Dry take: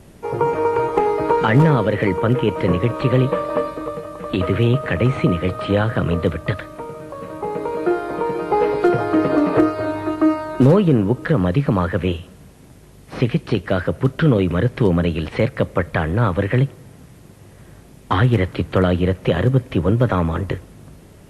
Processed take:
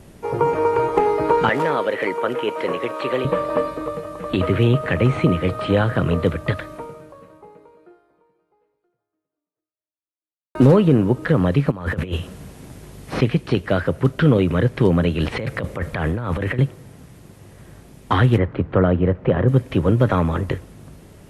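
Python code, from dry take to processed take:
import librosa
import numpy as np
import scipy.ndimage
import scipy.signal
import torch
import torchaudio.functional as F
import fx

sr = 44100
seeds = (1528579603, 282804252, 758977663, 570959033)

y = fx.highpass(x, sr, hz=440.0, slope=12, at=(1.49, 3.25))
y = fx.over_compress(y, sr, threshold_db=-24.0, ratio=-0.5, at=(11.7, 13.2), fade=0.02)
y = fx.over_compress(y, sr, threshold_db=-23.0, ratio=-1.0, at=(15.2, 16.59))
y = fx.lowpass(y, sr, hz=1600.0, slope=12, at=(18.37, 19.47), fade=0.02)
y = fx.edit(y, sr, fx.fade_out_span(start_s=6.74, length_s=3.81, curve='exp'), tone=tone)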